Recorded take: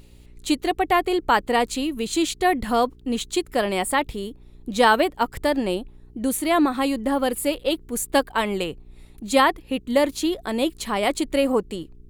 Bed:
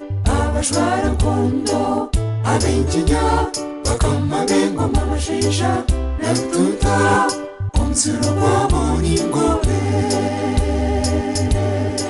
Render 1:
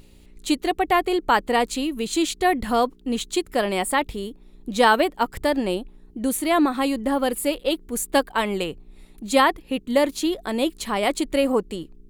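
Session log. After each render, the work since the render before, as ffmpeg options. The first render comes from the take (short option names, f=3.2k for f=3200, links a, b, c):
-af "bandreject=f=60:t=h:w=4,bandreject=f=120:t=h:w=4"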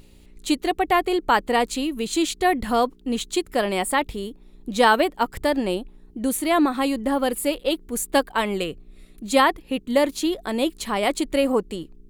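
-filter_complex "[0:a]asettb=1/sr,asplit=3[a][b][c];[a]atrim=end=8.604[d];[b]atrim=start=8.6:end=9.24,asetpts=PTS-STARTPTS,afade=t=in:d=0.004:c=qsin,afade=t=out:st=0.636:d=0.004:c=qsin,asuperstop=centerf=880:order=4:qfactor=3[e];[c]atrim=start=9.236[f];[d][e]acrossfade=d=0.004:c1=hsin:c2=qsin[g];[g][f]acrossfade=d=0.004:c1=qsin:c2=hsin"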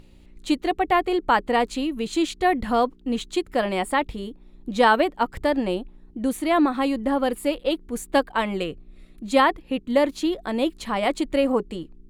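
-af "lowpass=f=3.1k:p=1,bandreject=f=410:w=12"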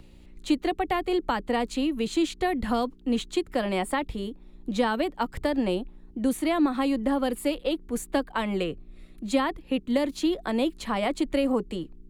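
-filter_complex "[0:a]acrossover=split=300|2300[a][b][c];[c]alimiter=level_in=2.5dB:limit=-24dB:level=0:latency=1:release=240,volume=-2.5dB[d];[a][b][d]amix=inputs=3:normalize=0,acrossover=split=290|3000[e][f][g];[f]acompressor=threshold=-25dB:ratio=6[h];[e][h][g]amix=inputs=3:normalize=0"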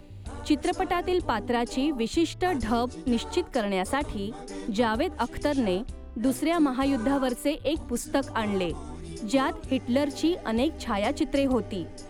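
-filter_complex "[1:a]volume=-22.5dB[a];[0:a][a]amix=inputs=2:normalize=0"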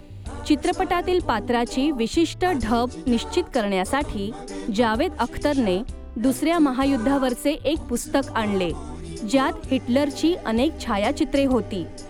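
-af "volume=4.5dB"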